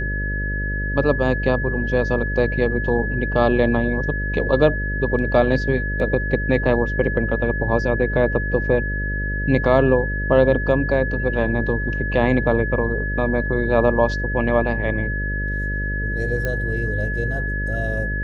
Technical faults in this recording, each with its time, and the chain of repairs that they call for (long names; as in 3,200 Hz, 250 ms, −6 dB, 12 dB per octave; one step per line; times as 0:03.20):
mains buzz 50 Hz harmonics 12 −25 dBFS
whistle 1,700 Hz −26 dBFS
0:16.45: click −12 dBFS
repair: click removal
notch filter 1,700 Hz, Q 30
hum removal 50 Hz, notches 12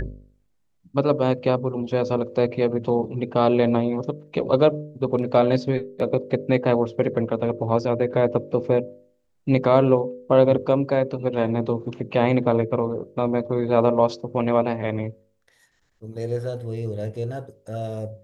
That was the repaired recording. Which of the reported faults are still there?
none of them is left